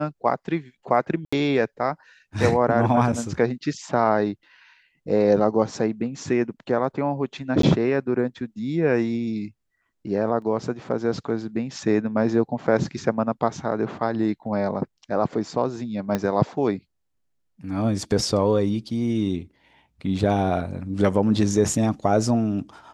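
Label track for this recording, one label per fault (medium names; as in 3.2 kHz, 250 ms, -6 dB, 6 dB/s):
1.250000	1.320000	dropout 75 ms
7.620000	7.630000	dropout 13 ms
10.420000	10.420000	dropout 2.1 ms
16.150000	16.150000	pop -10 dBFS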